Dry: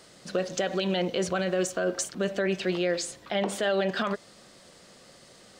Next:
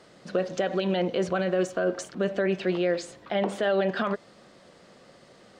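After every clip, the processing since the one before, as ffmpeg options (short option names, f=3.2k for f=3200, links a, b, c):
-af "lowpass=f=1.8k:p=1,lowshelf=f=80:g=-7.5,volume=2.5dB"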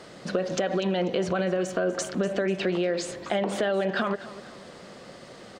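-filter_complex "[0:a]asplit=2[a][b];[b]alimiter=level_in=1dB:limit=-24dB:level=0:latency=1:release=75,volume=-1dB,volume=1dB[c];[a][c]amix=inputs=2:normalize=0,acompressor=threshold=-24dB:ratio=6,aecho=1:1:245|490|735|980:0.158|0.065|0.0266|0.0109,volume=1.5dB"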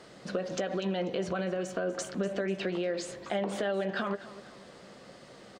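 -filter_complex "[0:a]asplit=2[a][b];[b]adelay=15,volume=-12.5dB[c];[a][c]amix=inputs=2:normalize=0,volume=-6dB"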